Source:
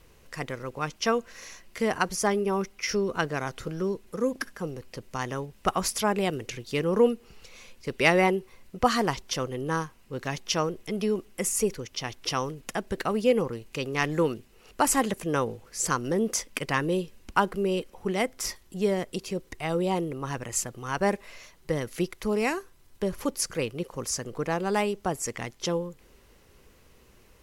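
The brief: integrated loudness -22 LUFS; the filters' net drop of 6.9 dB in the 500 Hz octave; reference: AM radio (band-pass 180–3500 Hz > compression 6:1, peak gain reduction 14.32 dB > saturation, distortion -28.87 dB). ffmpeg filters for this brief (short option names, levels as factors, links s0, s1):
-af "highpass=180,lowpass=3500,equalizer=f=500:t=o:g=-8.5,acompressor=threshold=0.0251:ratio=6,asoftclip=threshold=0.126,volume=7.08"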